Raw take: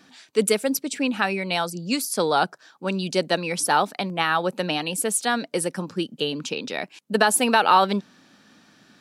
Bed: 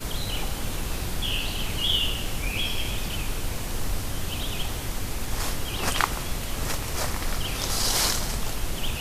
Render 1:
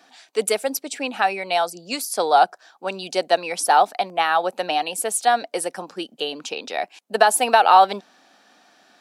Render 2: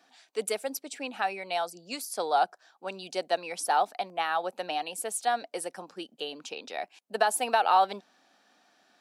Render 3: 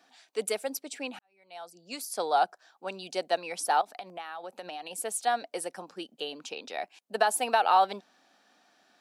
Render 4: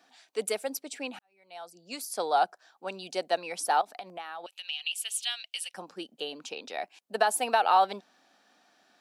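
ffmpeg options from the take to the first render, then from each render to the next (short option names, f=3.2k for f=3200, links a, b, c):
-af "highpass=390,equalizer=f=730:w=3.7:g=11"
-af "volume=-9.5dB"
-filter_complex "[0:a]asettb=1/sr,asplit=3[a][b][c];[a]atrim=end=3.814[d];[b]atrim=start=3.81:end=4.91,asetpts=PTS-STARTPTS,afade=t=in:d=0.004:c=qsin,afade=t=out:st=1.096:d=0.004:c=qsin,acompressor=threshold=-36dB:ratio=6:attack=3.2:release=140:knee=1:detection=peak[e];[c]atrim=start=4.906[f];[d][e]acrossfade=d=0.004:c1=hsin:c2=qsin[g];[g][f]acrossfade=d=0.004:c1=qsin:c2=hsin,asplit=2[h][i];[h]atrim=end=1.19,asetpts=PTS-STARTPTS,afade=t=out:st=1.186:d=0.004:c=hsin[j];[i]atrim=start=1.19,asetpts=PTS-STARTPTS,afade=t=in:d=0.87:c=qua[k];[j][k]concat=n=2:v=0:a=1"
-filter_complex "[0:a]asettb=1/sr,asplit=3[a][b][c];[a]atrim=end=4.464[d];[b]atrim=start=4.46:end=5.74,asetpts=PTS-STARTPTS,afade=t=in:d=0.004:c=qsin,afade=t=out:st=1.276:d=0.004:c=qsin,highpass=f=2.9k:t=q:w=5.1[e];[c]atrim=start=5.736[f];[d][e]acrossfade=d=0.004:c1=hsin:c2=qsin[g];[g][f]acrossfade=d=0.004:c1=qsin:c2=hsin"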